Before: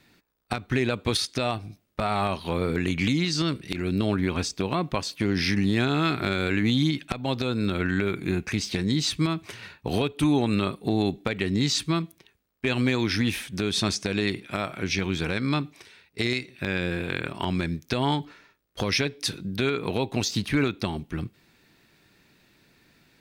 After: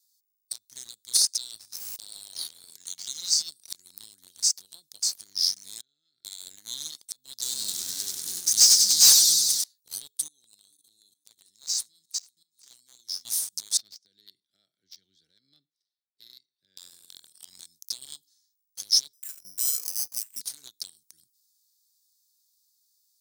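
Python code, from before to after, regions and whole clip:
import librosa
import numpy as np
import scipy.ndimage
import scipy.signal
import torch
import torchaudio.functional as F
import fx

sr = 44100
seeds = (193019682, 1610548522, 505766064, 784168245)

y = fx.chain(x, sr, fx.lowpass(hz=2900.0, slope=6),
    fx.tilt_shelf(db=-6.0, hz=1300.0),
    fx.env_flatten(amount_pct=70), at=(1.34, 3.23))
y = fx.chain(y, sr, fx.lowpass(hz=3000.0, slope=12),
    fx.level_steps(step_db=21), at=(5.81, 6.25))
y = fx.chain(y, sr, fx.leveller(passes=3),
    fx.echo_warbled(ms=96, feedback_pct=70, rate_hz=2.8, cents=102, wet_db=-4.0), at=(7.42, 9.64))
y = fx.chain(y, sr, fx.reverse_delay_fb(ms=240, feedback_pct=55, wet_db=-10),
    fx.level_steps(step_db=17), at=(10.28, 13.25))
y = fx.chain(y, sr, fx.highpass(hz=85.0, slope=12),
    fx.air_absorb(metres=390.0),
    fx.band_widen(depth_pct=70), at=(13.77, 16.77))
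y = fx.chain(y, sr, fx.lowpass(hz=10000.0, slope=12),
    fx.resample_bad(factor=8, down='filtered', up='hold'), at=(19.13, 20.41))
y = scipy.signal.sosfilt(scipy.signal.cheby2(4, 40, 2700.0, 'highpass', fs=sr, output='sos'), y)
y = fx.tilt_eq(y, sr, slope=2.0)
y = fx.leveller(y, sr, passes=2)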